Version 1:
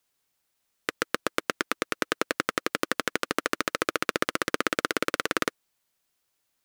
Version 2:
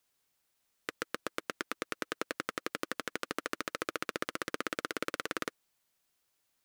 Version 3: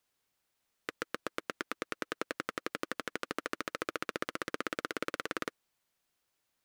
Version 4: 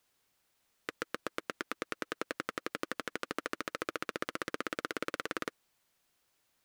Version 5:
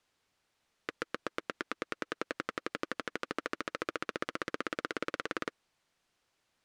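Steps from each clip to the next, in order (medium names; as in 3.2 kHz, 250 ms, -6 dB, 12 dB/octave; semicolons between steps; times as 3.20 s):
peak limiter -12 dBFS, peak gain reduction 9 dB; trim -1.5 dB
treble shelf 4.7 kHz -5 dB
peak limiter -21 dBFS, peak gain reduction 6.5 dB; trim +5 dB
distance through air 58 m; trim +1 dB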